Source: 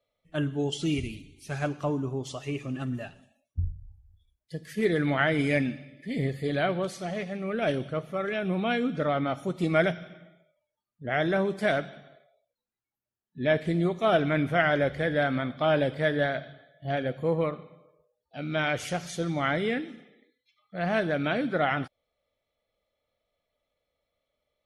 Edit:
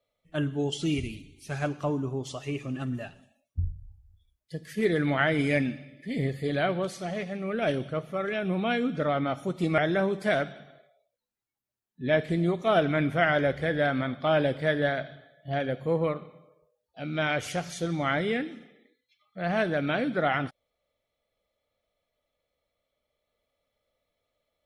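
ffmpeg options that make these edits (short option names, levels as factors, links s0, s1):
-filter_complex "[0:a]asplit=2[s0][s1];[s0]atrim=end=9.782[s2];[s1]atrim=start=11.148[s3];[s2][s3]acrossfade=d=0.004:c1=hsin:c2=hsin"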